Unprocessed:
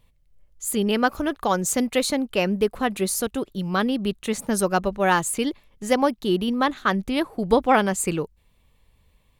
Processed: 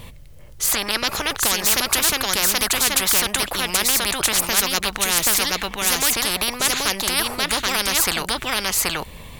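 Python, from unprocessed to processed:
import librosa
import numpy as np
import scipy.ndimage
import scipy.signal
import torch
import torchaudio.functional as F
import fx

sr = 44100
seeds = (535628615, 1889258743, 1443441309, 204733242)

p1 = fx.high_shelf(x, sr, hz=7800.0, db=-10.5, at=(0.66, 1.3))
p2 = p1 + fx.echo_single(p1, sr, ms=779, db=-5.0, dry=0)
p3 = fx.spectral_comp(p2, sr, ratio=10.0)
y = F.gain(torch.from_numpy(p3), 3.5).numpy()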